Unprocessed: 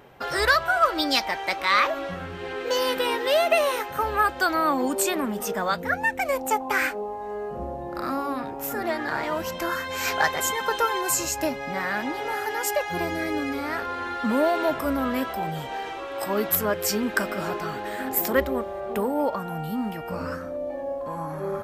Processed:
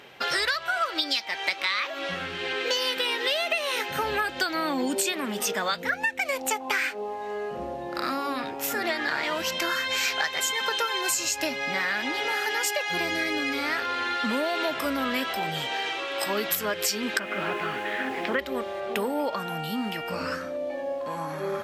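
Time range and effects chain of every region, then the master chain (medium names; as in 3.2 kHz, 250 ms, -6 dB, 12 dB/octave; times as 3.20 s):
3.76–5.12 s: peaking EQ 150 Hz +8 dB 2.1 oct + band-stop 1.2 kHz, Q 7.4
17.19–18.39 s: low-pass 2.9 kHz 24 dB/octave + word length cut 10-bit, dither triangular
whole clip: frequency weighting D; compression 10:1, threshold -23 dBFS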